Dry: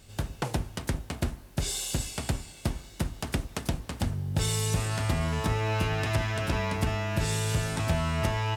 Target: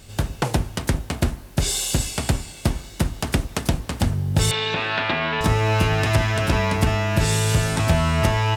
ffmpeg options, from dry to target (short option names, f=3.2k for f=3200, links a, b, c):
-filter_complex "[0:a]asettb=1/sr,asplit=3[a][b][c];[a]atrim=end=4.514[d];[b]atrim=start=4.51:end=5.41,asetpts=PTS-STARTPTS,afade=t=in:d=0.004:c=qsin,afade=t=out:st=0.896:d=0.004:c=qsin,highpass=270,equalizer=f=910:t=q:w=4:g=3,equalizer=f=1.6k:t=q:w=4:g=7,equalizer=f=2.5k:t=q:w=4:g=7,equalizer=f=3.7k:t=q:w=4:g=8,lowpass=f=3.8k:w=0.5412,lowpass=f=3.8k:w=1.3066[e];[c]atrim=start=5.406[f];[d][e]acrossfade=d=0.004:c1=hsin:c2=qsin[g];[g][f]acrossfade=d=0.004:c1=qsin:c2=hsin,volume=8.5dB"